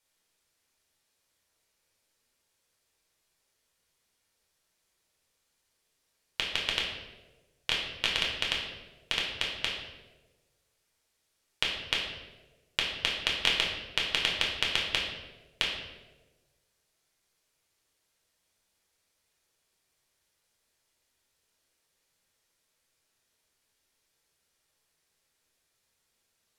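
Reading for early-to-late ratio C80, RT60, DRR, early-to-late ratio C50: 5.5 dB, 1.3 s, -3.0 dB, 3.0 dB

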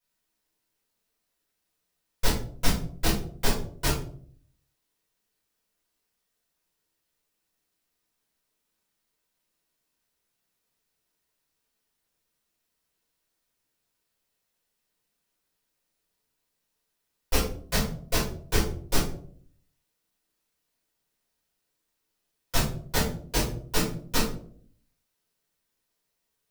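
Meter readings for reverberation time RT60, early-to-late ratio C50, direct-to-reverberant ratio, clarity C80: 0.55 s, 5.0 dB, -9.5 dB, 9.5 dB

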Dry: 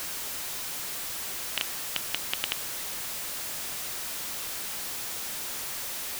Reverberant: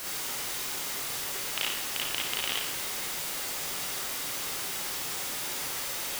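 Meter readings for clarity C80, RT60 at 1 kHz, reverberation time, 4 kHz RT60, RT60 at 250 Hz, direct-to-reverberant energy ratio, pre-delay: 4.5 dB, 0.70 s, 0.70 s, 0.65 s, 0.70 s, -6.0 dB, 35 ms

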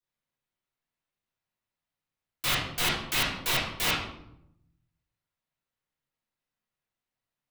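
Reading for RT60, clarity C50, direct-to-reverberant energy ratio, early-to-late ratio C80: 0.80 s, 2.0 dB, -10.0 dB, 6.5 dB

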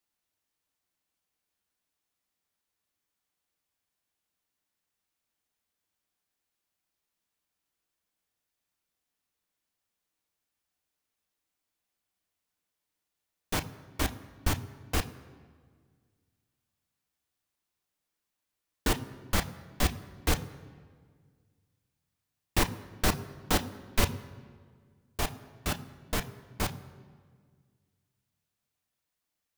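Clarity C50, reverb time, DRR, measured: 16.0 dB, 1.7 s, 7.5 dB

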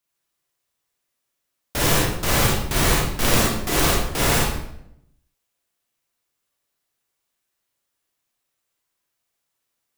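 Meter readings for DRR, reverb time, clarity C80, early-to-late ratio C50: -5.0 dB, 0.75 s, 4.5 dB, -0.5 dB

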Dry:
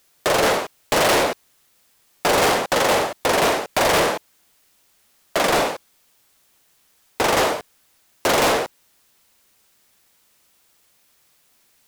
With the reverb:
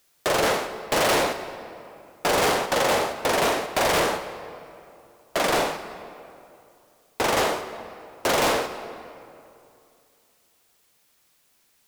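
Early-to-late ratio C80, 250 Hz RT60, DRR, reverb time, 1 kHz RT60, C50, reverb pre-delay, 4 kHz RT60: 11.0 dB, 2.6 s, 10.0 dB, 2.5 s, 2.5 s, 10.5 dB, 40 ms, 1.6 s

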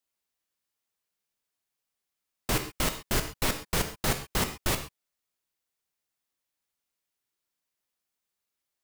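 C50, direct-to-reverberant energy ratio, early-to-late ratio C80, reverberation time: 10.0 dB, 6.5 dB, 13.5 dB, no single decay rate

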